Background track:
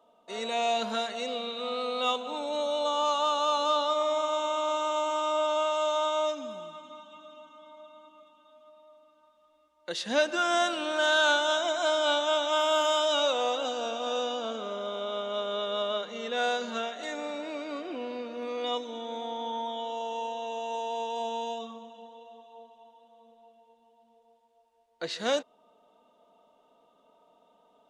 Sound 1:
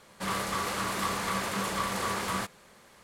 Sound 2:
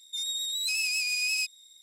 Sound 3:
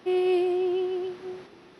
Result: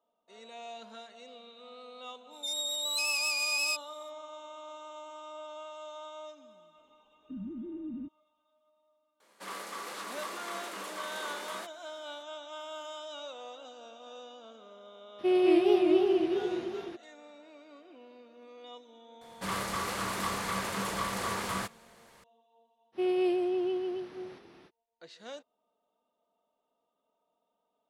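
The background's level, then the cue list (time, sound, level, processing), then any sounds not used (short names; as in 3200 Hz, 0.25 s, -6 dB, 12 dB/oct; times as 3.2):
background track -17 dB
2.3 add 2 -2 dB, fades 0.05 s
6.62 add 2 -8 dB + inverted band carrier 2800 Hz
9.2 add 1 -9 dB + HPF 260 Hz 24 dB/oct
15.18 add 3 -1 dB, fades 0.02 s + warbling echo 0.21 s, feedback 55%, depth 206 cents, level -3 dB
19.21 add 1 -2.5 dB
22.92 add 3 -4.5 dB, fades 0.05 s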